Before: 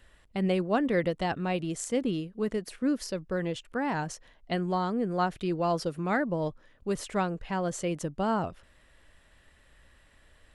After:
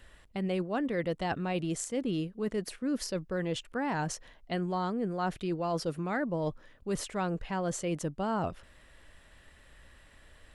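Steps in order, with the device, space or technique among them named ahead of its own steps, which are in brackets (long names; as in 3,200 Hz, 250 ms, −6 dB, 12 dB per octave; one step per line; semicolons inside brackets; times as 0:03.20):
compression on the reversed sound (reversed playback; downward compressor 5 to 1, threshold −32 dBFS, peak gain reduction 10 dB; reversed playback)
level +3 dB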